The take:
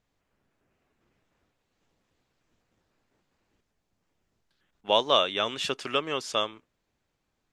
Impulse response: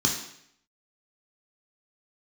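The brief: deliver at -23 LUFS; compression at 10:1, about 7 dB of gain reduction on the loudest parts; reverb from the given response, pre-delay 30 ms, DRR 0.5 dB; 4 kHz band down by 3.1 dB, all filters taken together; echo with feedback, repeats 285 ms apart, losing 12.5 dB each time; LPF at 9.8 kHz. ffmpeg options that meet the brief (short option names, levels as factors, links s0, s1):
-filter_complex "[0:a]lowpass=9800,equalizer=f=4000:t=o:g=-4,acompressor=threshold=0.0631:ratio=10,aecho=1:1:285|570|855:0.237|0.0569|0.0137,asplit=2[s0][s1];[1:a]atrim=start_sample=2205,adelay=30[s2];[s1][s2]afir=irnorm=-1:irlink=0,volume=0.282[s3];[s0][s3]amix=inputs=2:normalize=0,volume=1.88"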